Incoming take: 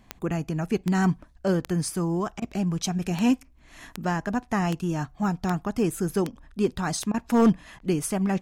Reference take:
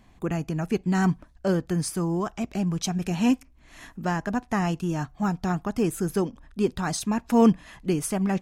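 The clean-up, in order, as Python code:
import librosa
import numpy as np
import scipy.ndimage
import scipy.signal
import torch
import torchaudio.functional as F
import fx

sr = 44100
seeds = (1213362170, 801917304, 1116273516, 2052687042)

y = fx.fix_declip(x, sr, threshold_db=-13.0)
y = fx.fix_declick_ar(y, sr, threshold=10.0)
y = fx.fix_interpolate(y, sr, at_s=(2.4, 7.12, 7.79), length_ms=20.0)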